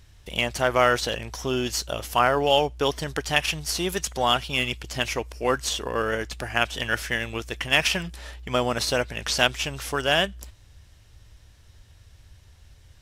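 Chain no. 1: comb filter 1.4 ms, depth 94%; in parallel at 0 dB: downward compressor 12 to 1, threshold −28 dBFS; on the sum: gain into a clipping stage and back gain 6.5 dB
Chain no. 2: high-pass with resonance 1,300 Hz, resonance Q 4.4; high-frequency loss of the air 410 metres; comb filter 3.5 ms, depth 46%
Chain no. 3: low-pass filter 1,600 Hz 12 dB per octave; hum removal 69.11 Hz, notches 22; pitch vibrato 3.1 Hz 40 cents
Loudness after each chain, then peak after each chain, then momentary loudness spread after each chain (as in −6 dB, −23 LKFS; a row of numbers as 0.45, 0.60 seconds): −20.0, −23.0, −28.0 LKFS; −6.5, −3.0, −7.5 dBFS; 7, 17, 11 LU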